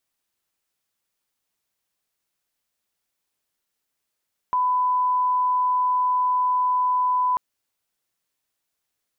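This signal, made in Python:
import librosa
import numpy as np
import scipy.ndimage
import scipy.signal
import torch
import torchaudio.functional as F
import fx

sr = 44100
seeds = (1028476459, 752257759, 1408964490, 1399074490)

y = fx.lineup_tone(sr, length_s=2.84, level_db=-18.0)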